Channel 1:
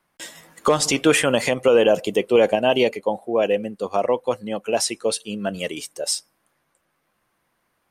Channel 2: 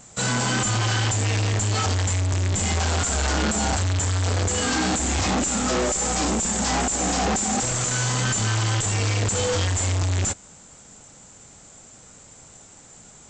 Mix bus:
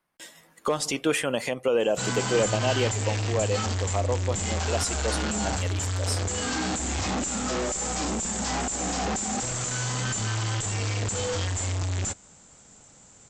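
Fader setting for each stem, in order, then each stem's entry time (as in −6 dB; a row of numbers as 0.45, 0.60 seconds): −8.0, −5.5 decibels; 0.00, 1.80 seconds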